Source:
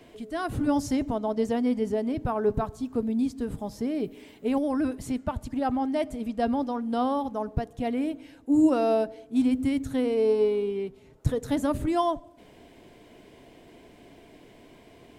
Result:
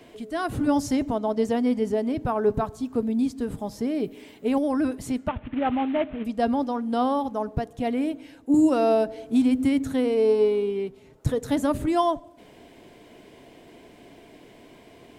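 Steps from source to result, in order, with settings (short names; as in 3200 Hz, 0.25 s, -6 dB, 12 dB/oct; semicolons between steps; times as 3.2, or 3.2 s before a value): 5.28–6.25 CVSD 16 kbps; low shelf 96 Hz -6 dB; 8.54–9.92 three-band squash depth 70%; gain +3 dB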